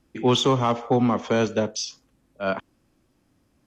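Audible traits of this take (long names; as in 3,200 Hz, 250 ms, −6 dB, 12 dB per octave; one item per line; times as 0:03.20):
background noise floor −67 dBFS
spectral slope −5.0 dB per octave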